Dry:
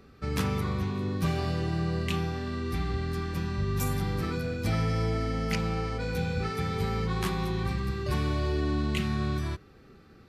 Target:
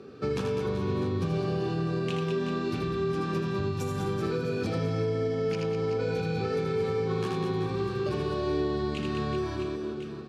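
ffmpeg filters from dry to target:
-filter_complex "[0:a]asplit=3[a][b][c];[a]afade=t=out:st=0.65:d=0.02[d];[b]lowshelf=f=130:g=8,afade=t=in:st=0.65:d=0.02,afade=t=out:st=1.49:d=0.02[e];[c]afade=t=in:st=1.49:d=0.02[f];[d][e][f]amix=inputs=3:normalize=0,aecho=1:1:80|200|380|650|1055:0.631|0.398|0.251|0.158|0.1,acompressor=threshold=-26dB:ratio=6,highpass=f=100:w=0.5412,highpass=f=100:w=1.3066,equalizer=f=400:t=o:w=0.82:g=10.5,alimiter=limit=-23.5dB:level=0:latency=1:release=467,lowpass=6.8k,bandreject=f=2k:w=6.3,volume=3.5dB"

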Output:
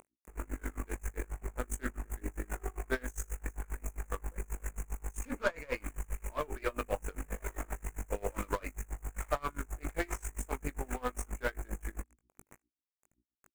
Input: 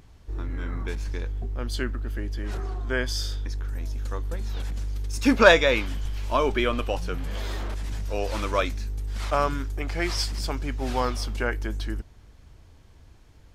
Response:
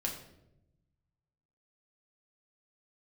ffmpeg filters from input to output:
-filter_complex "[0:a]acrusher=bits=6:mix=0:aa=0.000001,bass=f=250:g=-5,treble=f=4k:g=0,acompressor=threshold=-24dB:ratio=16,asuperstop=centerf=4200:order=8:qfactor=0.89,equalizer=f=6.3k:t=o:w=0.73:g=8,bandreject=f=60:t=h:w=6,bandreject=f=120:t=h:w=6,bandreject=f=180:t=h:w=6,bandreject=f=240:t=h:w=6,bandreject=f=300:t=h:w=6,bandreject=f=360:t=h:w=6,asplit=2[a][b];[b]adelay=20,volume=-6dB[c];[a][c]amix=inputs=2:normalize=0,aeval=exprs='0.211*(cos(1*acos(clip(val(0)/0.211,-1,1)))-cos(1*PI/2))+0.0188*(cos(8*acos(clip(val(0)/0.211,-1,1)))-cos(8*PI/2))':c=same,aeval=exprs='val(0)*pow(10,-27*(0.5-0.5*cos(2*PI*7.5*n/s))/20)':c=same,volume=-2dB"

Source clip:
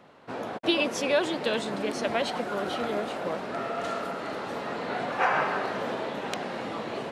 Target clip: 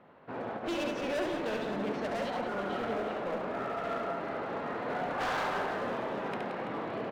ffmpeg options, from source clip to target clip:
-filter_complex "[0:a]lowpass=2.2k,asoftclip=type=hard:threshold=-27.5dB,asplit=2[a][b];[b]aecho=0:1:70|175|332.5|568.8|923.1:0.631|0.398|0.251|0.158|0.1[c];[a][c]amix=inputs=2:normalize=0,volume=-4dB"

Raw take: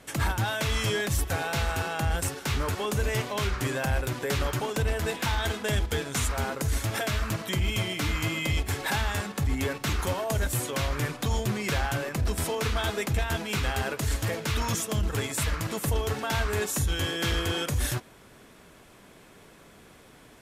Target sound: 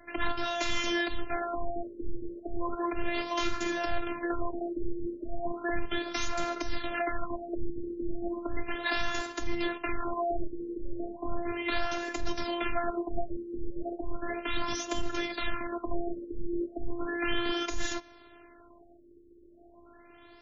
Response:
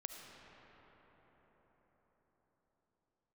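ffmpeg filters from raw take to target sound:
-af "afftfilt=real='hypot(re,im)*cos(PI*b)':imag='0':win_size=512:overlap=0.75,afftfilt=real='re*lt(b*sr/1024,520*pow(7400/520,0.5+0.5*sin(2*PI*0.35*pts/sr)))':imag='im*lt(b*sr/1024,520*pow(7400/520,0.5+0.5*sin(2*PI*0.35*pts/sr)))':win_size=1024:overlap=0.75,volume=2.5dB"

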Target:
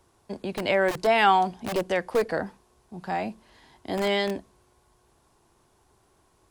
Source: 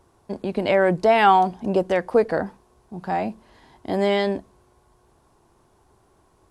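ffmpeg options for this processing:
-filter_complex "[0:a]acrossover=split=300|1700[a][b][c];[a]aeval=exprs='(mod(13.3*val(0)+1,2)-1)/13.3':c=same[d];[c]acontrast=53[e];[d][b][e]amix=inputs=3:normalize=0,volume=-5dB"

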